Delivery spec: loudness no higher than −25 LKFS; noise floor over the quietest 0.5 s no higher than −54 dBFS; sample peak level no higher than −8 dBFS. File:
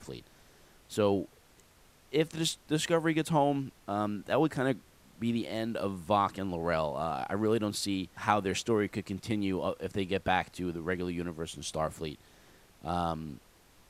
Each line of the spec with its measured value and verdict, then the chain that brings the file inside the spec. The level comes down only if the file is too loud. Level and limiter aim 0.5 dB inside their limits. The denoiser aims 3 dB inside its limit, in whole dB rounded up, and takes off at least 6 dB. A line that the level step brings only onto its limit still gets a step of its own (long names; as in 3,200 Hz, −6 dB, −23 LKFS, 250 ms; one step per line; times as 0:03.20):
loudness −32.0 LKFS: in spec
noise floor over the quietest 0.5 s −61 dBFS: in spec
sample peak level −9.0 dBFS: in spec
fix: no processing needed